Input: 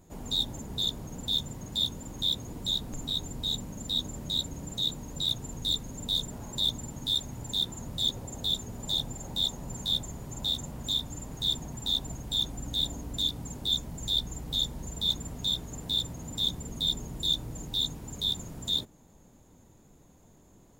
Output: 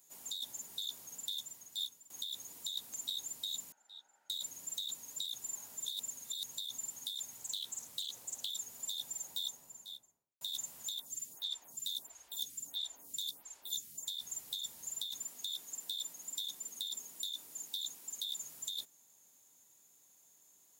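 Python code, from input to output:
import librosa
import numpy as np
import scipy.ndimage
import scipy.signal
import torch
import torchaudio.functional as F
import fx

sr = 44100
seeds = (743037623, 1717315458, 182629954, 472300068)

y = fx.double_bandpass(x, sr, hz=1100.0, octaves=0.73, at=(3.72, 4.3))
y = fx.doppler_dist(y, sr, depth_ms=0.26, at=(7.38, 8.5))
y = fx.studio_fade_out(y, sr, start_s=9.11, length_s=1.3)
y = fx.stagger_phaser(y, sr, hz=1.5, at=(10.98, 14.06), fade=0.02)
y = fx.cheby1_highpass(y, sr, hz=220.0, order=2, at=(15.24, 18.41))
y = fx.edit(y, sr, fx.fade_out_to(start_s=1.14, length_s=0.96, floor_db=-17.5),
    fx.reverse_span(start_s=5.52, length_s=1.04), tone=tone)
y = np.diff(y, prepend=0.0)
y = fx.over_compress(y, sr, threshold_db=-39.0, ratio=-1.0)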